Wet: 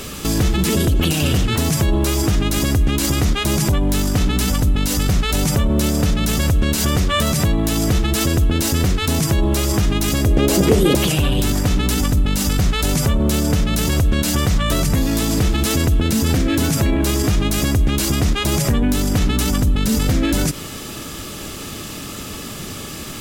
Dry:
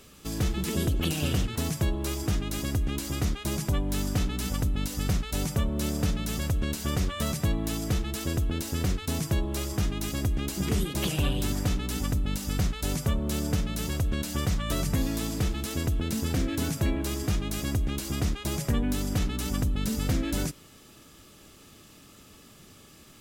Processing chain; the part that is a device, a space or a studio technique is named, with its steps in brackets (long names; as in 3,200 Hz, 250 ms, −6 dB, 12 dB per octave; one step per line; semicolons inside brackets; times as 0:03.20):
loud club master (downward compressor 2 to 1, threshold −29 dBFS, peak gain reduction 5 dB; hard clipping −22 dBFS, distortion −31 dB; boost into a limiter +30.5 dB)
0:10.26–0:10.95: parametric band 500 Hz +12.5 dB 1.2 octaves
level −8.5 dB